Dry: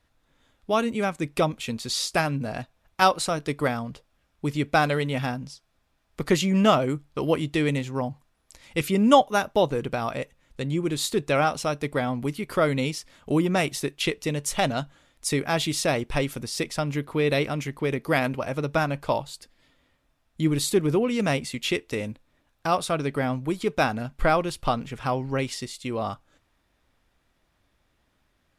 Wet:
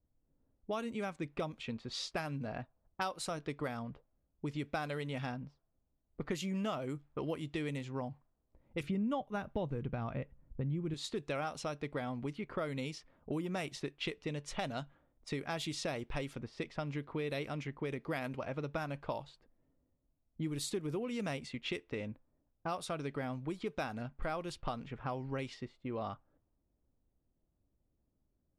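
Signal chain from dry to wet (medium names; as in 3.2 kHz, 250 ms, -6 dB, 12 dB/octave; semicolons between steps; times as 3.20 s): level-controlled noise filter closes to 420 Hz, open at -20.5 dBFS; 8.83–10.94 s: tone controls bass +12 dB, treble -14 dB; compression 4:1, threshold -27 dBFS, peak gain reduction 14.5 dB; trim -8 dB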